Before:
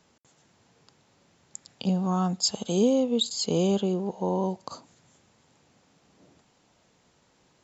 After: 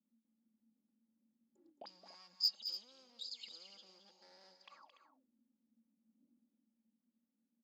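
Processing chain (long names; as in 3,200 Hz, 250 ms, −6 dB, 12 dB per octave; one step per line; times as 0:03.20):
high-pass filter 85 Hz 12 dB per octave
hum removal 156.3 Hz, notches 23
noise gate −52 dBFS, range −13 dB
high-shelf EQ 3,800 Hz −7.5 dB
comb filter 3.6 ms, depth 87%
dynamic equaliser 6,000 Hz, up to −7 dB, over −46 dBFS, Q 0.72
brickwall limiter −21 dBFS, peak gain reduction 12 dB
hard clipping −26 dBFS, distortion −14 dB
envelope filter 220–4,900 Hz, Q 21, up, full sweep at −31.5 dBFS
soft clipping −31 dBFS, distortion −19 dB
loudspeakers that aren't time-aligned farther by 75 metres −10 dB, 99 metres −12 dB
level +9 dB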